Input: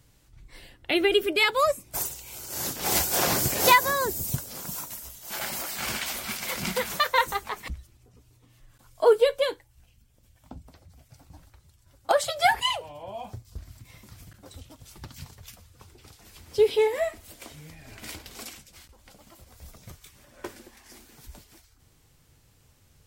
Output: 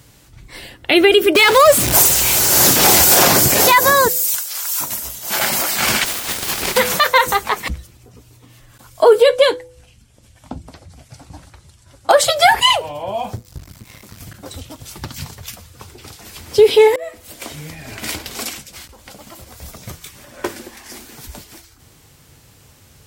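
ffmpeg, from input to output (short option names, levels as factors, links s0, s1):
-filter_complex "[0:a]asettb=1/sr,asplit=3[s0][s1][s2];[s0]atrim=end=1.354[s3];[s1]atrim=start=1.35:end=3.28,asetpts=PTS-STARTPTS,afade=t=in:d=0.004:c=qsin,afade=t=out:st=1.926:d=0.004:c=qsin,aeval=exprs='val(0)+0.5*0.0562*sgn(val(0))':c=same[s4];[s2]atrim=start=3.276[s5];[s3][s4]acrossfade=d=0.004:c1=hsin:c2=qsin[s6];[s6][s5]acrossfade=d=0.004:c1=qsin:c2=hsin,asettb=1/sr,asplit=3[s7][s8][s9];[s7]atrim=end=4.084[s10];[s8]atrim=start=4.08:end=4.81,asetpts=PTS-STARTPTS,afade=t=in:d=0.004:c=qsin,afade=t=out:st=0.726:d=0.004:c=qsin,highpass=1400[s11];[s9]atrim=start=4.806[s12];[s10][s11]acrossfade=d=0.004:c1=hsin:c2=qsin[s13];[s13][s12]acrossfade=d=0.004:c1=qsin:c2=hsin,asettb=1/sr,asplit=3[s14][s15][s16];[s14]atrim=end=6.044[s17];[s15]atrim=start=6.04:end=6.76,asetpts=PTS-STARTPTS,afade=t=in:d=0.004:c=qsin,afade=t=out:st=0.716:d=0.004:c=qsin,aeval=exprs='abs(val(0))':c=same[s18];[s16]atrim=start=6.756[s19];[s17][s18]acrossfade=d=0.004:c1=hsin:c2=qsin[s20];[s20][s19]acrossfade=d=0.004:c1=qsin:c2=hsin,asettb=1/sr,asplit=3[s21][s22][s23];[s21]atrim=end=9.264[s24];[s22]atrim=start=9.26:end=12.1,asetpts=PTS-STARTPTS,afade=t=in:d=0.004:c=qsin,afade=t=out:st=2.836:d=0.004:c=qsin,lowpass=f=11000:w=0.5412,lowpass=f=11000:w=1.3066[s25];[s23]atrim=start=12.096[s26];[s24][s25]acrossfade=d=0.004:c1=hsin:c2=qsin[s27];[s27][s26]acrossfade=d=0.004:c1=qsin:c2=hsin,asettb=1/sr,asplit=3[s28][s29][s30];[s28]atrim=end=13.364[s31];[s29]atrim=start=13.36:end=14.21,asetpts=PTS-STARTPTS,afade=t=in:d=0.004:c=qsin,afade=t=out:st=0.846:d=0.004:c=qsin,aeval=exprs='max(val(0),0)':c=same[s32];[s30]atrim=start=14.206[s33];[s31][s32]acrossfade=d=0.004:c1=hsin:c2=qsin[s34];[s34][s33]acrossfade=d=0.004:c1=qsin:c2=hsin,asplit=2[s35][s36];[s35]atrim=end=16.96,asetpts=PTS-STARTPTS,afade=t=out:st=16.956:d=0.004:c=hsin[s37];[s36]atrim=start=16.96,asetpts=PTS-STARTPTS,afade=t=in:d=0.57[s38];[s37][s38]concat=n=2:v=0:a=1,highpass=f=92:p=1,bandreject=f=166.5:t=h:w=4,bandreject=f=333:t=h:w=4,bandreject=f=499.5:t=h:w=4,alimiter=level_in=5.96:limit=0.891:release=50:level=0:latency=1,volume=0.891"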